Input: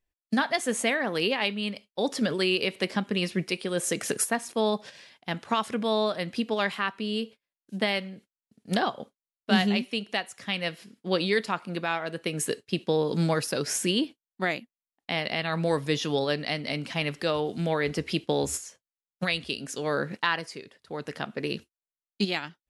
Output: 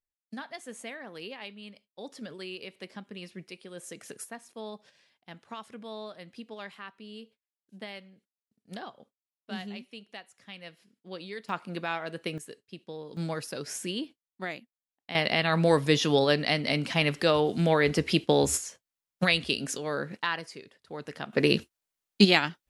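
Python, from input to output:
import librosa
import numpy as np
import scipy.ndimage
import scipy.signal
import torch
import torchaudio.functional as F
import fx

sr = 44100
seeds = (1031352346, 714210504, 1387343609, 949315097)

y = fx.gain(x, sr, db=fx.steps((0.0, -15.0), (11.49, -3.5), (12.38, -16.0), (13.17, -8.0), (15.15, 3.5), (19.77, -4.0), (21.33, 8.0)))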